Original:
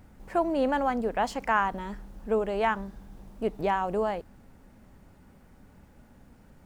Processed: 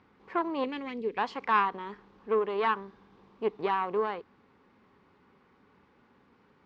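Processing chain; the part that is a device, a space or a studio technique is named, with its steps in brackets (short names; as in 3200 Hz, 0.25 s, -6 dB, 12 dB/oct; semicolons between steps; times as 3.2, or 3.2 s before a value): guitar amplifier (tube stage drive 17 dB, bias 0.7; tone controls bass -8 dB, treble +9 dB; speaker cabinet 100–3800 Hz, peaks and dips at 410 Hz +7 dB, 630 Hz -9 dB, 1100 Hz +9 dB, 2200 Hz +3 dB); 0.64–1.18 band shelf 990 Hz -16 dB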